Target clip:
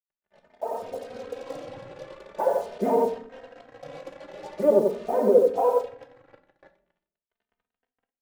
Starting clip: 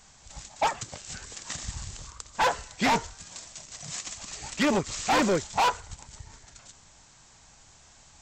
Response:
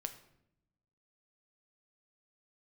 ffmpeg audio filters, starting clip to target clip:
-filter_complex "[0:a]asettb=1/sr,asplit=3[link_01][link_02][link_03];[link_01]atrim=end=0.734[link_04];[link_02]atrim=start=0.73:end=3.2,asetpts=PTS-STARTPTS,afade=type=in:duration=0.004:curve=qsin,afade=type=out:start_time=2.466:duration=0.004:curve=qsin,aeval=exprs='val(0)+0.5*0.0075*sgn(val(0))':channel_layout=same[link_05];[link_03]atrim=start=3.196[link_06];[link_04][link_05]acrossfade=duration=0.004:curve1=hsin:curve2=qsin[link_07];[link_07][link_06]acrossfade=duration=0.004:curve1=qsin:curve2=hsin,highpass=320,asplit=2[link_08][link_09];[link_09]adelay=87.46,volume=-7dB,highshelf=frequency=4000:gain=-1.97[link_10];[link_08][link_10]amix=inputs=2:normalize=0,alimiter=limit=-20dB:level=0:latency=1,lowpass=frequency=520:width_type=q:width=4.8,acrusher=bits=7:mix=0:aa=0.5[link_11];[1:a]atrim=start_sample=2205,asetrate=74970,aresample=44100[link_12];[link_11][link_12]afir=irnorm=-1:irlink=0,dynaudnorm=framelen=320:gausssize=5:maxgain=16dB,asplit=2[link_13][link_14];[link_14]adelay=3,afreqshift=0.44[link_15];[link_13][link_15]amix=inputs=2:normalize=1"

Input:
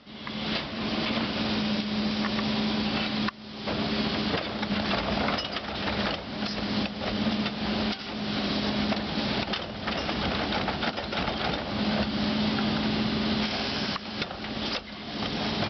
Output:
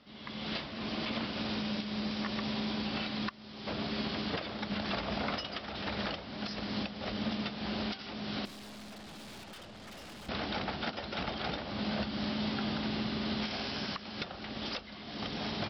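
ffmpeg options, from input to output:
ffmpeg -i in.wav -filter_complex "[0:a]asettb=1/sr,asplit=3[link_01][link_02][link_03];[link_01]atrim=end=8.454[link_04];[link_02]atrim=start=8.45:end=10.29,asetpts=PTS-STARTPTS,afade=type=in:duration=0.004:curve=qsin,afade=type=out:start_time=1.836:duration=0.004:curve=qsin,aeval=exprs='(tanh(89.1*val(0)+0.3)-tanh(0.3))/89.1':channel_layout=same[link_05];[link_03]atrim=start=10.286[link_06];[link_04][link_05]acrossfade=duration=0.004:curve1=hsin:curve2=qsin[link_07];[link_07][link_06]acrossfade=duration=0.004:curve1=qsin:curve2=hsin,volume=-7.5dB" out.wav

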